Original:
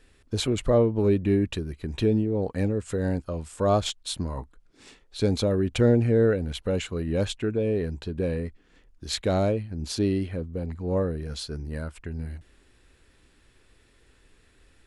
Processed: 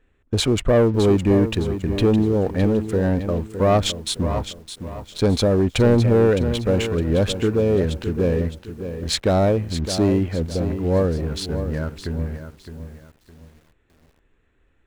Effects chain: Wiener smoothing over 9 samples; sample leveller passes 2; lo-fi delay 0.612 s, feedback 35%, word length 8-bit, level -10 dB

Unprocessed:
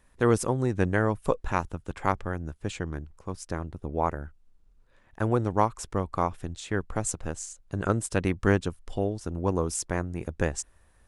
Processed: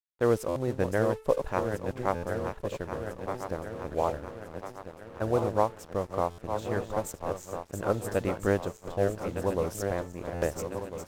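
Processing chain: regenerating reverse delay 0.675 s, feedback 73%, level -7 dB; bell 560 Hz +9.5 dB 0.77 oct; de-hum 438.3 Hz, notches 13; crossover distortion -42 dBFS; modulation noise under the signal 27 dB; stuck buffer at 0.48/2.15/6.3/10.34, samples 512, times 6; decimation joined by straight lines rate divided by 2×; gain -6 dB

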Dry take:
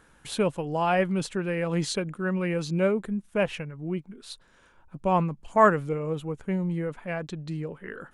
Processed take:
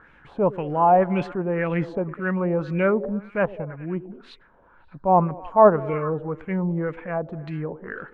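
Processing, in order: transient shaper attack -6 dB, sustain -2 dB; delay with a stepping band-pass 0.101 s, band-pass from 320 Hz, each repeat 0.7 oct, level -12 dB; LFO low-pass sine 1.9 Hz 760–2400 Hz; gain +3.5 dB

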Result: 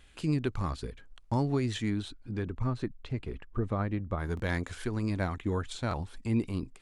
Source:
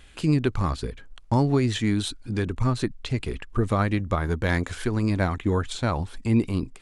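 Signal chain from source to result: 1.89–4.18 LPF 2500 Hz -> 1100 Hz 6 dB/oct; stuck buffer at 4.35/5.89, samples 1024, times 1; gain -7.5 dB

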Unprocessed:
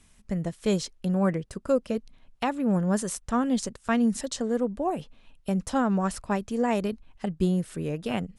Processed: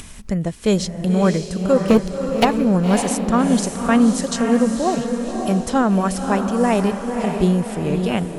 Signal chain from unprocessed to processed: 1.88–2.45 sample leveller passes 3; upward compressor, threshold -33 dBFS; diffused feedback echo 0.56 s, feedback 47%, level -5.5 dB; gain +7.5 dB

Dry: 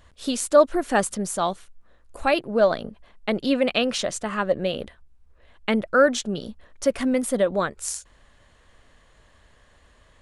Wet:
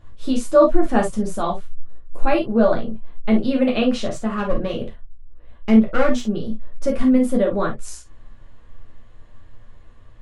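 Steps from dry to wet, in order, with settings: 4.07–6.29 one-sided clip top -23 dBFS; tilt -2.5 dB/oct; reverb, pre-delay 9 ms, DRR -1.5 dB; gain -3.5 dB

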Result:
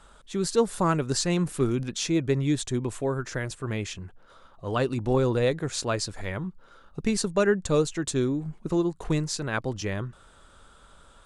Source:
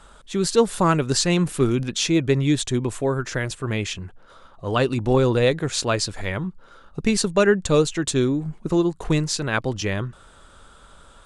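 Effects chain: dynamic EQ 3000 Hz, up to -4 dB, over -40 dBFS, Q 1.3; gain -5 dB

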